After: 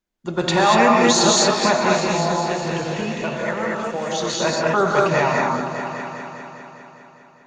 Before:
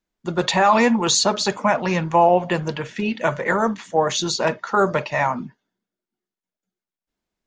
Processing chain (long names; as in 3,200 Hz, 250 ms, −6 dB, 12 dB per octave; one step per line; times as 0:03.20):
0:01.93–0:04.41: downward compressor 4 to 1, threshold −24 dBFS, peak gain reduction 12 dB
echo whose low-pass opens from repeat to repeat 202 ms, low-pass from 400 Hz, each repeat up 2 octaves, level −6 dB
reverb whose tail is shaped and stops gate 260 ms rising, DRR −2 dB
level −1.5 dB